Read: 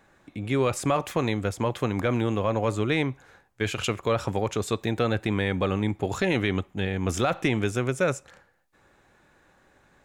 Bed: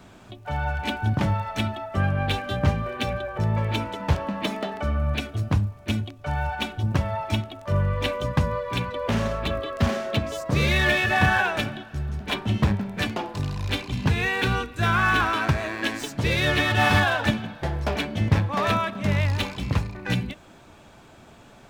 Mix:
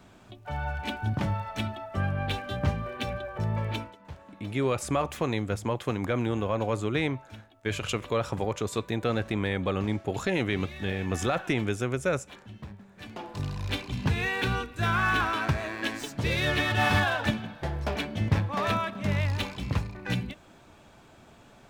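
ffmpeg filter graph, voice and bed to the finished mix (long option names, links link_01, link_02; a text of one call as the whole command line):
ffmpeg -i stem1.wav -i stem2.wav -filter_complex "[0:a]adelay=4050,volume=-3dB[link_01];[1:a]volume=11.5dB,afade=type=out:start_time=3.72:duration=0.24:silence=0.158489,afade=type=in:start_time=13:duration=0.43:silence=0.141254[link_02];[link_01][link_02]amix=inputs=2:normalize=0" out.wav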